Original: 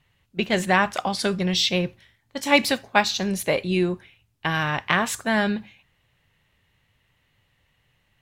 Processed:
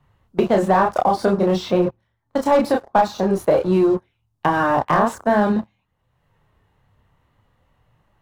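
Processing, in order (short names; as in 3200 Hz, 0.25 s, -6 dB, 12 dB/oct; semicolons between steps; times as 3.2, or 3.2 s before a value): dynamic EQ 520 Hz, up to +7 dB, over -34 dBFS, Q 0.7; chorus voices 2, 0.5 Hz, delay 28 ms, depth 3 ms; sample leveller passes 3; resonant high shelf 1600 Hz -11 dB, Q 1.5; three-band squash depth 70%; gain -5.5 dB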